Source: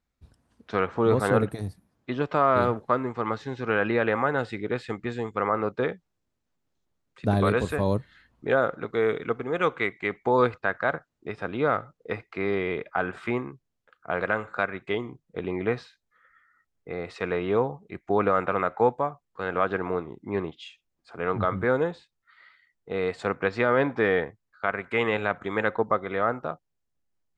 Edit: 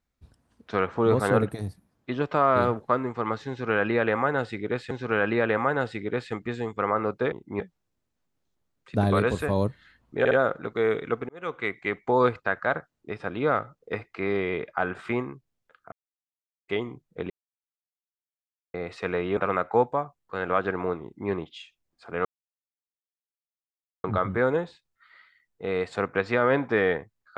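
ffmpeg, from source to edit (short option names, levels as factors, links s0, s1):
-filter_complex "[0:a]asplit=13[s0][s1][s2][s3][s4][s5][s6][s7][s8][s9][s10][s11][s12];[s0]atrim=end=4.912[s13];[s1]atrim=start=3.488:end=5.902[s14];[s2]atrim=start=20.078:end=20.362[s15];[s3]atrim=start=5.898:end=8.552[s16];[s4]atrim=start=8.488:end=8.552[s17];[s5]atrim=start=8.488:end=9.47,asetpts=PTS-STARTPTS,afade=t=out:st=0.978:d=0.004:c=hsin[s18];[s6]atrim=start=9.47:end=14.1,asetpts=PTS-STARTPTS,afade=t=in:d=0.48,afade=t=out:st=4.626:d=0.004:c=hsin[s19];[s7]atrim=start=14.1:end=14.86,asetpts=PTS-STARTPTS,volume=0[s20];[s8]atrim=start=14.86:end=15.48,asetpts=PTS-STARTPTS,afade=t=in:d=0.004:c=hsin,afade=t=out:st=0.616:d=0.004:c=hsin[s21];[s9]atrim=start=15.48:end=16.92,asetpts=PTS-STARTPTS,volume=0[s22];[s10]atrim=start=16.92:end=17.552,asetpts=PTS-STARTPTS,afade=t=in:d=0.004:c=hsin[s23];[s11]atrim=start=18.428:end=21.31,asetpts=PTS-STARTPTS,afade=t=out:st=2.878:d=0.004:c=hsin,apad=pad_dur=1.79[s24];[s12]atrim=start=21.31,asetpts=PTS-STARTPTS,afade=t=in:d=0.004:c=hsin[s25];[s13][s14]acrossfade=d=0.004:c1=hsin:c2=hsin[s26];[s26][s15]acrossfade=d=0.004:c1=hsin:c2=hsin[s27];[s27][s16]acrossfade=d=0.004:c1=hsin:c2=hsin[s28];[s28][s17]acrossfade=d=0.004:c1=hsin:c2=hsin[s29];[s18][s19][s20][s21][s22][s23]concat=n=6:v=0:a=1[s30];[s29][s30]acrossfade=d=0.004:c1=hsin:c2=hsin[s31];[s24][s25]concat=n=2:v=0:a=1[s32];[s31][s32]acrossfade=d=0.004:c1=hsin:c2=hsin"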